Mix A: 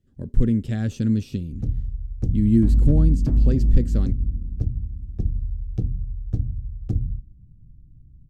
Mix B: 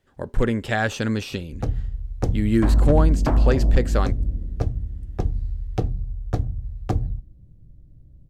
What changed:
speech -4.0 dB; master: remove EQ curve 230 Hz 0 dB, 890 Hz -26 dB, 5600 Hz -13 dB

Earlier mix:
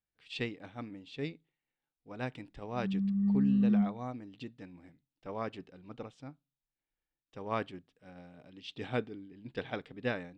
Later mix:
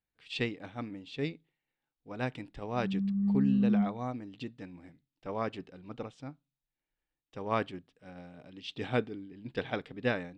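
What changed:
speech +3.5 dB; background: add LPF 1500 Hz

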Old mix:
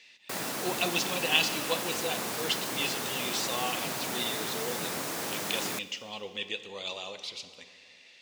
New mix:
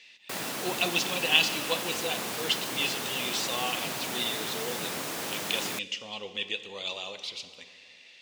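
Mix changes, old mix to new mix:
background: send off; master: add bell 3000 Hz +3.5 dB 0.85 oct

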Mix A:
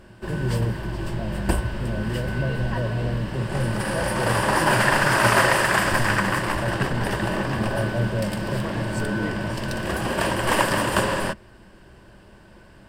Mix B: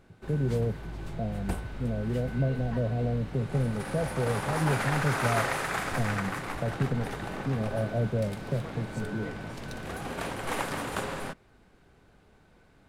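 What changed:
background -10.5 dB; master: remove ripple EQ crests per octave 1.3, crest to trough 8 dB

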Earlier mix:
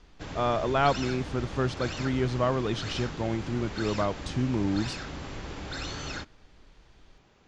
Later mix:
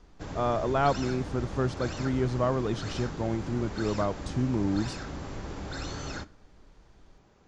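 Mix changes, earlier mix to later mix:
background: send +9.5 dB; master: add bell 2900 Hz -7.5 dB 1.6 oct

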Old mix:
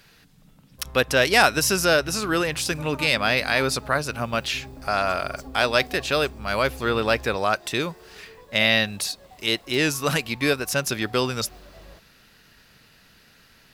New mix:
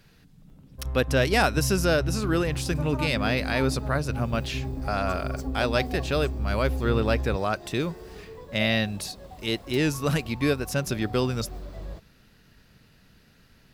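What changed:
speech -7.5 dB; master: add low shelf 430 Hz +11.5 dB

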